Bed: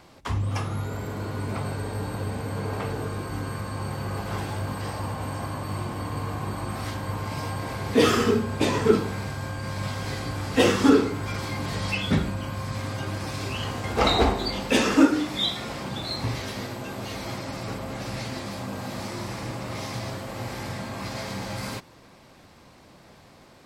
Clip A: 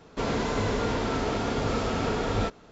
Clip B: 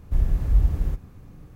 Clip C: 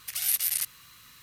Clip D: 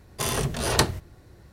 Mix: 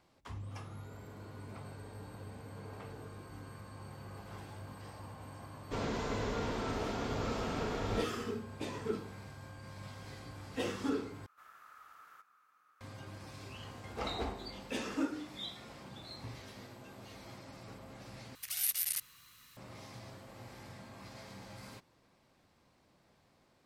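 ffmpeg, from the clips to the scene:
ffmpeg -i bed.wav -i cue0.wav -i cue1.wav -i cue2.wav -filter_complex "[0:a]volume=-17.5dB[link_01];[2:a]highpass=frequency=1300:width_type=q:width=11[link_02];[link_01]asplit=3[link_03][link_04][link_05];[link_03]atrim=end=11.264[link_06];[link_02]atrim=end=1.55,asetpts=PTS-STARTPTS,volume=-15.5dB[link_07];[link_04]atrim=start=12.806:end=18.354[link_08];[3:a]atrim=end=1.22,asetpts=PTS-STARTPTS,volume=-7dB[link_09];[link_05]atrim=start=19.566[link_10];[1:a]atrim=end=2.71,asetpts=PTS-STARTPTS,volume=-9dB,afade=type=in:duration=0.004:curve=hsin,afade=type=out:start_time=2.706:duration=0.004:curve=hsin,adelay=5540[link_11];[link_06][link_07]acrossfade=duration=0.004:curve1=hsin:curve2=hsin[link_12];[link_12][link_08]acrossfade=duration=0.004:curve1=hsin:curve2=hsin[link_13];[link_13][link_09]acrossfade=duration=0.004:curve1=hsin:curve2=hsin[link_14];[link_14][link_10]acrossfade=duration=0.004:curve1=hsin:curve2=hsin[link_15];[link_15][link_11]amix=inputs=2:normalize=0" out.wav

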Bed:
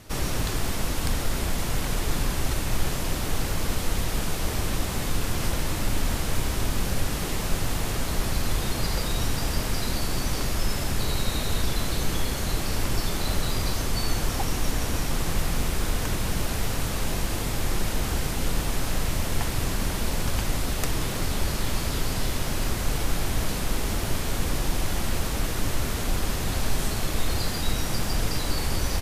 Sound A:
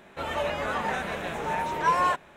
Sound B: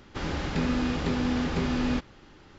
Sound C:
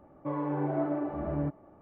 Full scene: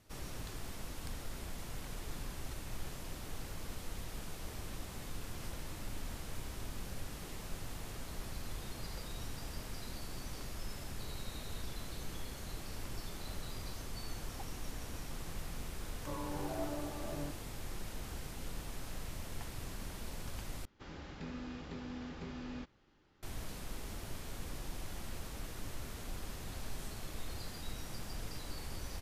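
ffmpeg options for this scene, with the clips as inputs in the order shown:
ffmpeg -i bed.wav -i cue0.wav -i cue1.wav -i cue2.wav -filter_complex "[0:a]volume=-17.5dB[link_01];[3:a]lowshelf=frequency=330:gain=-8.5[link_02];[link_01]asplit=2[link_03][link_04];[link_03]atrim=end=20.654[link_05];[2:a]atrim=end=2.58,asetpts=PTS-STARTPTS,volume=-17.5dB[link_06];[link_04]atrim=start=23.226[link_07];[link_02]atrim=end=1.81,asetpts=PTS-STARTPTS,volume=-7dB,afade=type=in:duration=0.004:curve=hsin,afade=type=out:start_time=1.806:duration=0.004:curve=hsin,adelay=15810[link_08];[link_05][link_06]acrossfade=duration=0.004:curve1=hsin:curve2=hsin[link_09];[link_09][link_07]acrossfade=duration=0.004:curve1=hsin:curve2=hsin[link_10];[link_10][link_08]amix=inputs=2:normalize=0" out.wav

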